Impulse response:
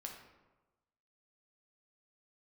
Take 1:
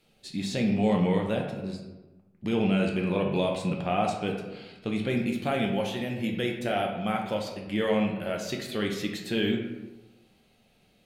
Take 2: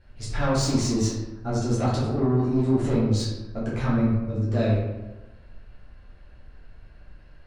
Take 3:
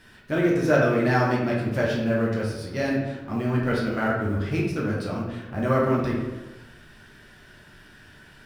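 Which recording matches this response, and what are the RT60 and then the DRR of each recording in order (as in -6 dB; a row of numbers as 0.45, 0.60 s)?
1; 1.2, 1.2, 1.2 s; 0.5, -9.5, -5.0 dB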